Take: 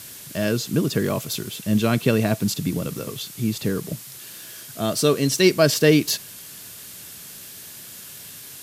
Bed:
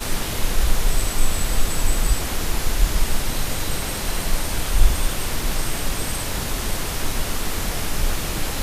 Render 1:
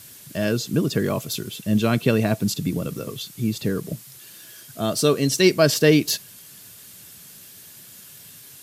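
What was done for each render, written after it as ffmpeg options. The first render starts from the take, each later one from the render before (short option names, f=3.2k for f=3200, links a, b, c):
-af "afftdn=nr=6:nf=-40"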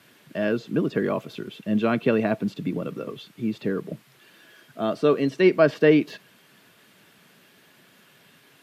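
-filter_complex "[0:a]acrossover=split=3100[a][b];[b]acompressor=threshold=-32dB:ratio=4:attack=1:release=60[c];[a][c]amix=inputs=2:normalize=0,acrossover=split=170 3100:gain=0.1 1 0.0891[d][e][f];[d][e][f]amix=inputs=3:normalize=0"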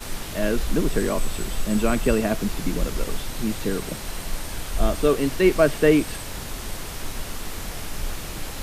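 -filter_complex "[1:a]volume=-7.5dB[a];[0:a][a]amix=inputs=2:normalize=0"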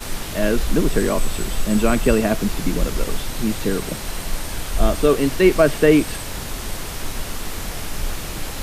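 -af "volume=4dB,alimiter=limit=-3dB:level=0:latency=1"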